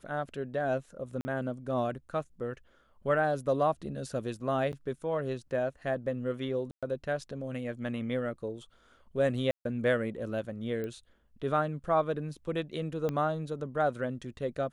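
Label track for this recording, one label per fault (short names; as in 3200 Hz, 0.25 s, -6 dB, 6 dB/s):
1.210000	1.250000	gap 40 ms
4.720000	4.730000	gap 9.4 ms
6.710000	6.830000	gap 0.116 s
9.510000	9.650000	gap 0.142 s
10.840000	10.840000	pop -26 dBFS
13.090000	13.090000	pop -20 dBFS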